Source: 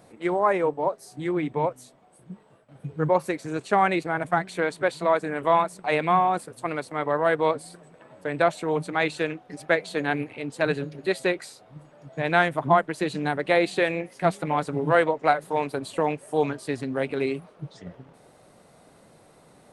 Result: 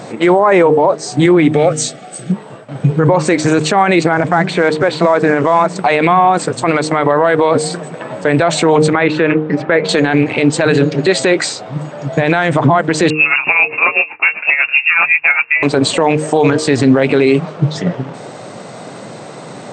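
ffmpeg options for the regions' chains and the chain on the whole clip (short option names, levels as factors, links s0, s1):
-filter_complex "[0:a]asettb=1/sr,asplit=3[s0][s1][s2];[s0]atrim=end=1.534[s3];[s1]atrim=start=1.53:end=2.32,asetpts=PTS-STARTPTS,afade=t=in:d=0.004:c=qsin,afade=t=out:st=0.786:d=0.004:c=qsin,asuperstop=centerf=980:order=8:qfactor=3.5,highshelf=f=2300:g=10[s4];[s2]atrim=start=2.316[s5];[s3][s4]acrossfade=d=0.004:c1=hsin:c2=qsin[s6];[s6][s5]acrossfade=d=0.004:c1=qsin:c2=hsin,asettb=1/sr,asplit=3[s7][s8][s9];[s7]atrim=end=4.134[s10];[s8]atrim=start=4.13:end=5.76,asetpts=PTS-STARTPTS,afade=t=in:d=0.004:c=qsin,afade=t=out:st=1.626:d=0.004:c=qsin,equalizer=f=7000:t=o:w=1.4:g=-14,acrusher=bits=8:mode=log:mix=0:aa=0.000001[s11];[s9]atrim=start=5.756[s12];[s10][s11]acrossfade=d=0.004:c1=hsin:c2=qsin[s13];[s13][s12]acrossfade=d=0.004:c1=qsin:c2=hsin,asettb=1/sr,asplit=3[s14][s15][s16];[s14]atrim=end=8.934[s17];[s15]atrim=start=8.93:end=9.89,asetpts=PTS-STARTPTS,afade=t=in:d=0.004:c=qsin,afade=t=out:st=0.956:d=0.004:c=qsin,lowpass=2100,bandreject=f=720:w=5.1[s18];[s16]atrim=start=9.886[s19];[s17][s18]acrossfade=d=0.004:c1=hsin:c2=qsin[s20];[s20][s19]acrossfade=d=0.004:c1=qsin:c2=hsin,asettb=1/sr,asplit=3[s21][s22][s23];[s21]atrim=end=13.104[s24];[s22]atrim=start=13.1:end=15.63,asetpts=PTS-STARTPTS,afade=t=in:d=0.004:c=qsin,afade=t=out:st=2.526:d=0.004:c=qsin,asplit=2[s25][s26];[s26]adelay=23,volume=0.75[s27];[s25][s27]amix=inputs=2:normalize=0,atrim=end_sample=111573,lowpass=f=2500:t=q:w=0.5098,lowpass=f=2500:t=q:w=0.6013,lowpass=f=2500:t=q:w=0.9,lowpass=f=2500:t=q:w=2.563,afreqshift=-2900,aeval=exprs='val(0)*pow(10,-22*(0.5-0.5*cos(2*PI*7.8*n/s))/20)':c=same[s28];[s23]atrim=start=15.626[s29];[s24][s28]acrossfade=d=0.004:c1=hsin:c2=qsin[s30];[s30][s29]acrossfade=d=0.004:c1=qsin:c2=hsin,afftfilt=real='re*between(b*sr/4096,100,8400)':imag='im*between(b*sr/4096,100,8400)':win_size=4096:overlap=0.75,bandreject=f=154.1:t=h:w=4,bandreject=f=308.2:t=h:w=4,bandreject=f=462.3:t=h:w=4,alimiter=level_in=18.8:limit=0.891:release=50:level=0:latency=1,volume=0.891"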